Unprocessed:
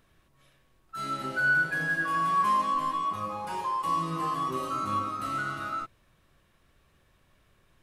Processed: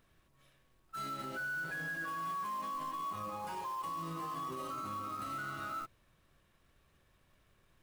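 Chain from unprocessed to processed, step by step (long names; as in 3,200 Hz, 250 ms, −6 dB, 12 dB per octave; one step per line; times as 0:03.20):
brickwall limiter −28.5 dBFS, peak gain reduction 11.5 dB
floating-point word with a short mantissa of 2 bits
level −4.5 dB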